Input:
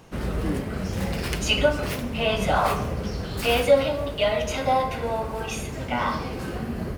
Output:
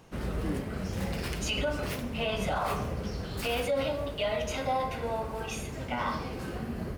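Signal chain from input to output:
brickwall limiter −15.5 dBFS, peak gain reduction 8.5 dB
level −5.5 dB

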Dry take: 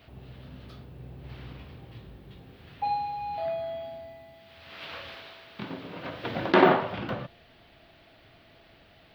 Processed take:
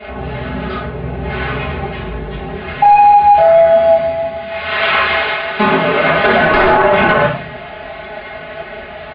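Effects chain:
stylus tracing distortion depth 0.15 ms
high-pass filter 72 Hz 24 dB per octave
parametric band 210 Hz −13.5 dB 2.1 octaves
comb filter 4.7 ms, depth 86%
in parallel at +3 dB: downward compressor, threshold −37 dBFS, peak gain reduction 19 dB
on the sum: flanger 1.6 Hz, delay 4.7 ms, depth 2.4 ms, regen +50%
gain into a clipping stage and back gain 26.5 dB
high-frequency loss of the air 340 metres
convolution reverb RT60 0.45 s, pre-delay 3 ms, DRR −7 dB
downsampling to 11,025 Hz
boost into a limiter +20.5 dB
one half of a high-frequency compander decoder only
level −1 dB

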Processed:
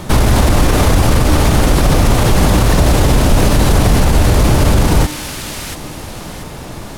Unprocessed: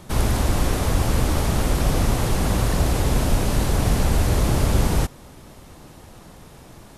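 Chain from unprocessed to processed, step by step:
tuned comb filter 300 Hz, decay 0.75 s, mix 60%
delay with a high-pass on its return 685 ms, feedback 33%, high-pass 2,000 Hz, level −9 dB
boost into a limiter +24.5 dB
linearly interpolated sample-rate reduction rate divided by 2×
level −1 dB

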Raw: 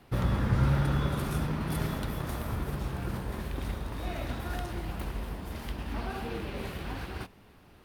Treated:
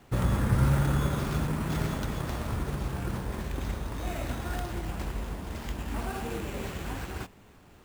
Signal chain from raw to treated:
sample-rate reduction 10,000 Hz
level +1.5 dB

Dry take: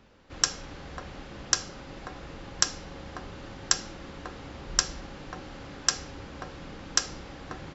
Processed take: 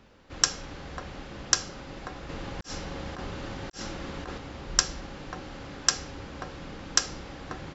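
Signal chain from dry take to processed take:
0:02.29–0:04.38: compressor whose output falls as the input rises −40 dBFS, ratio −0.5
level +1.5 dB

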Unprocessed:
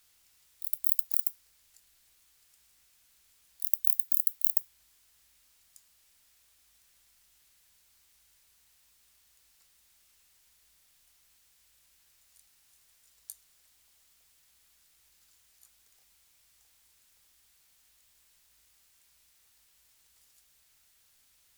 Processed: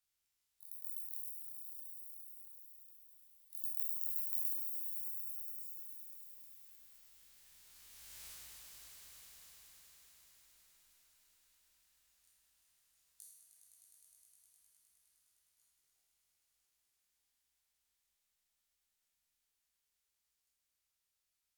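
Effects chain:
peak hold with a decay on every bin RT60 0.99 s
source passing by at 0:08.27, 9 m/s, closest 1.6 metres
echo that builds up and dies away 103 ms, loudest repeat 5, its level −11 dB
level +11.5 dB

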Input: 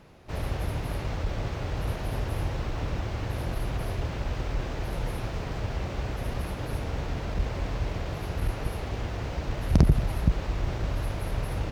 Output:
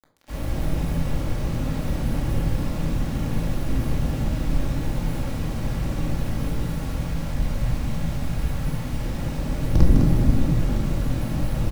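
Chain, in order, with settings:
sub-octave generator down 1 octave, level +3 dB
0:06.62–0:09.00: parametric band 250 Hz −11 dB 1.2 octaves
bit reduction 7 bits
echo with shifted repeats 205 ms, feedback 32%, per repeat +97 Hz, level −5.5 dB
rectangular room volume 690 cubic metres, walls furnished, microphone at 2.3 metres
level −4 dB

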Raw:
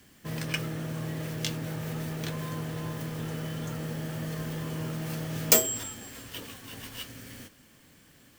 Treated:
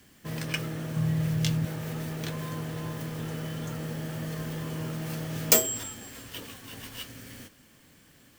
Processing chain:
0:00.96–0:01.65: low shelf with overshoot 210 Hz +7.5 dB, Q 1.5

